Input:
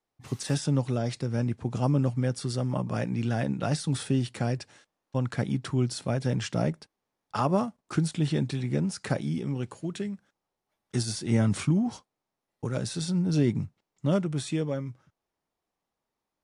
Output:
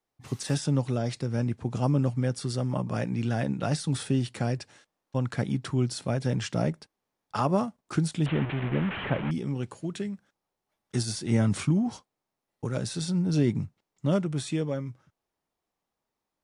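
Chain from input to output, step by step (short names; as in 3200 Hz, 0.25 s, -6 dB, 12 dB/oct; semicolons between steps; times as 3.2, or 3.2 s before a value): 8.26–9.31 delta modulation 16 kbps, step -27.5 dBFS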